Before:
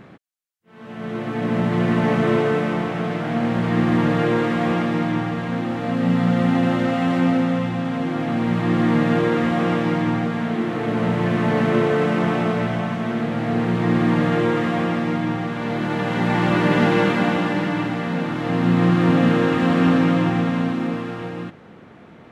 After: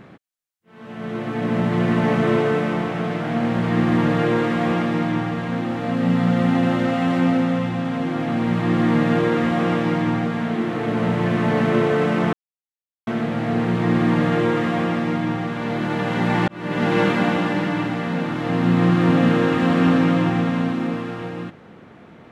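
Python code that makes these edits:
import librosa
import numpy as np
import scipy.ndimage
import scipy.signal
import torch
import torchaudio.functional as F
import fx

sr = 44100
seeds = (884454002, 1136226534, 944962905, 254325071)

y = fx.edit(x, sr, fx.silence(start_s=12.33, length_s=0.74),
    fx.fade_in_span(start_s=16.48, length_s=0.53), tone=tone)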